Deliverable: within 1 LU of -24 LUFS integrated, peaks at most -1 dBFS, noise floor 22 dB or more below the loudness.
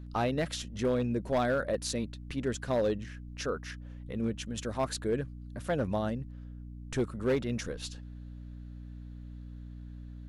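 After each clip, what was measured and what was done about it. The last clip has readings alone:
clipped 0.8%; flat tops at -22.5 dBFS; hum 60 Hz; harmonics up to 300 Hz; hum level -42 dBFS; loudness -33.0 LUFS; peak -22.5 dBFS; loudness target -24.0 LUFS
-> clip repair -22.5 dBFS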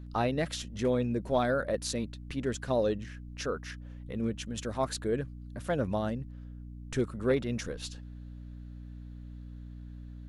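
clipped 0.0%; hum 60 Hz; harmonics up to 300 Hz; hum level -42 dBFS
-> de-hum 60 Hz, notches 5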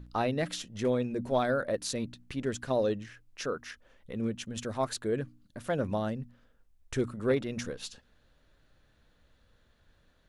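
hum none; loudness -33.0 LUFS; peak -15.5 dBFS; loudness target -24.0 LUFS
-> gain +9 dB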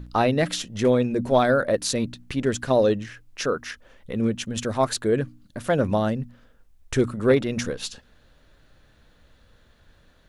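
loudness -24.0 LUFS; peak -6.5 dBFS; noise floor -58 dBFS

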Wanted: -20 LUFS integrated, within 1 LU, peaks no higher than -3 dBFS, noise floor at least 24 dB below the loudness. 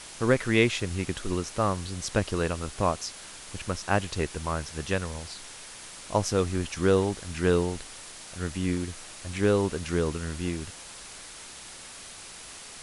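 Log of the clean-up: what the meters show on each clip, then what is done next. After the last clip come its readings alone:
noise floor -45 dBFS; noise floor target -53 dBFS; loudness -28.5 LUFS; peak -7.0 dBFS; loudness target -20.0 LUFS
-> denoiser 8 dB, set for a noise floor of -45 dBFS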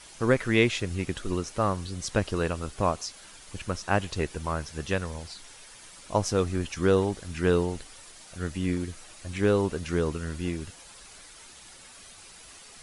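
noise floor -49 dBFS; noise floor target -53 dBFS
-> denoiser 6 dB, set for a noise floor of -49 dBFS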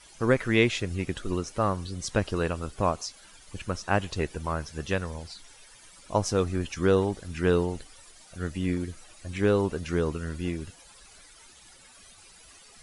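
noise floor -53 dBFS; loudness -28.5 LUFS; peak -7.0 dBFS; loudness target -20.0 LUFS
-> gain +8.5 dB; limiter -3 dBFS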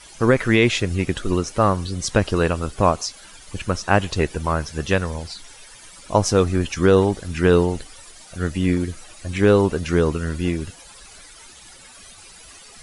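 loudness -20.5 LUFS; peak -3.0 dBFS; noise floor -45 dBFS

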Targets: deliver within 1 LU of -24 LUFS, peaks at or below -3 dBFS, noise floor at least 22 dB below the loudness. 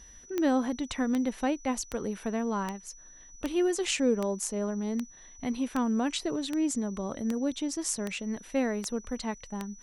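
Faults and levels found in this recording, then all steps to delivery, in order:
clicks 13; steady tone 5900 Hz; tone level -51 dBFS; loudness -31.0 LUFS; peak -15.0 dBFS; loudness target -24.0 LUFS
-> de-click; notch 5900 Hz, Q 30; gain +7 dB

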